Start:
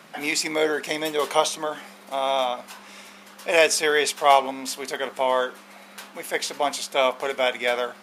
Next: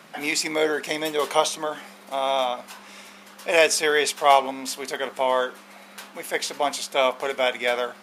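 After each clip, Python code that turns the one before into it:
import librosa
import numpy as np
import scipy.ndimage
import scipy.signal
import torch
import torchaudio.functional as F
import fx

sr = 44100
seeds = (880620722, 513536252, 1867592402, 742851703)

y = x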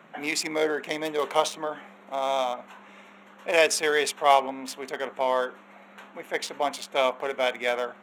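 y = fx.wiener(x, sr, points=9)
y = scipy.signal.sosfilt(scipy.signal.butter(2, 80.0, 'highpass', fs=sr, output='sos'), y)
y = y * librosa.db_to_amplitude(-2.5)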